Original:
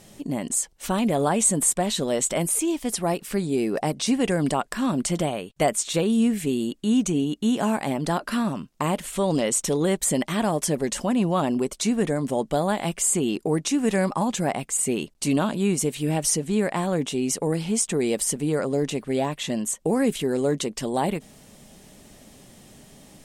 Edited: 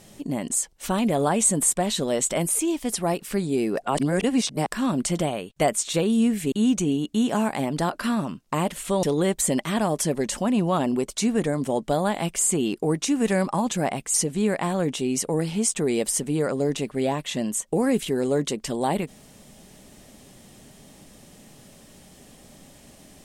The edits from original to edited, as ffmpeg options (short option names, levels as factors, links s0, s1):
-filter_complex "[0:a]asplit=6[s0][s1][s2][s3][s4][s5];[s0]atrim=end=3.822[s6];[s1]atrim=start=3.818:end=4.672,asetpts=PTS-STARTPTS,areverse[s7];[s2]atrim=start=4.668:end=6.522[s8];[s3]atrim=start=6.798:end=9.312[s9];[s4]atrim=start=9.658:end=14.772[s10];[s5]atrim=start=16.268[s11];[s6][s7]acrossfade=d=0.004:c1=hsin:c2=hsin[s12];[s12][s8]acrossfade=d=0.004:c1=hsin:c2=hsin[s13];[s13][s9]acrossfade=d=0.004:c1=hsin:c2=hsin[s14];[s14][s10]acrossfade=d=0.004:c1=hsin:c2=hsin[s15];[s15][s11]acrossfade=d=0.004:c1=hsin:c2=hsin"